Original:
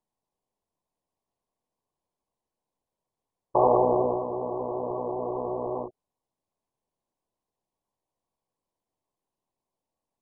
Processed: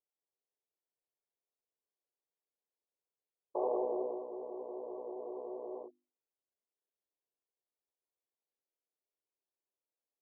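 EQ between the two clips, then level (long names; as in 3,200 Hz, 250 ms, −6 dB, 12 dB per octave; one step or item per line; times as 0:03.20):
four-pole ladder band-pass 480 Hz, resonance 40%
mains-hum notches 50/100/150/200/250/300/350 Hz
−3.0 dB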